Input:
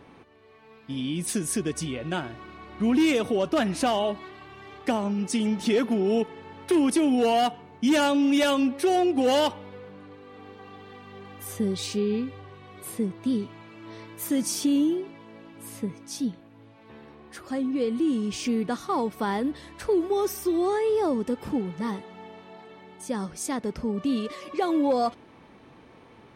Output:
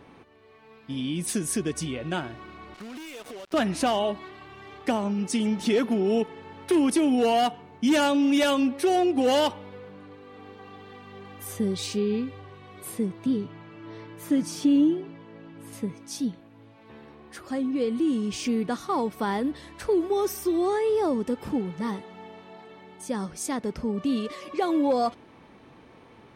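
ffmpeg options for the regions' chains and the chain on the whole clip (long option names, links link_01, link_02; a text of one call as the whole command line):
ffmpeg -i in.wav -filter_complex "[0:a]asettb=1/sr,asplit=3[link_01][link_02][link_03];[link_01]atrim=end=2.744[link_04];[link_02]atrim=start=2.74:end=3.54,asetpts=PTS-STARTPTS,afade=type=in:duration=0.004:curve=qsin,afade=type=out:start_time=0.796:duration=0.004:curve=qsin,highpass=frequency=710:poles=1,acompressor=threshold=-36dB:ratio=16:attack=3.2:release=140:knee=1:detection=peak,acrusher=bits=6:mix=0:aa=0.5[link_05];[link_03]atrim=start=3.536[link_06];[link_04][link_05]acrossfade=duration=0.004:curve1=hsin:curve2=qsin[link_07];[link_07][link_06]acrossfade=duration=0.004:curve1=qsin:curve2=hsin,asettb=1/sr,asplit=3[link_08][link_09][link_10];[link_08]atrim=end=13.264[link_11];[link_09]atrim=start=13.26:end=15.73,asetpts=PTS-STARTPTS,afade=type=in:duration=0.004:curve=qsin,afade=type=out:start_time=2.466:duration=0.004:curve=qsin,lowpass=frequency=2700:poles=1,equalizer=frequency=150:width_type=o:width=0.44:gain=7,aecho=1:1:6.7:0.37,atrim=end_sample=108927[link_12];[link_10]atrim=start=15.726[link_13];[link_11][link_12]acrossfade=duration=0.004:curve1=hsin:curve2=qsin[link_14];[link_14][link_13]acrossfade=duration=0.004:curve1=qsin:curve2=hsin" out.wav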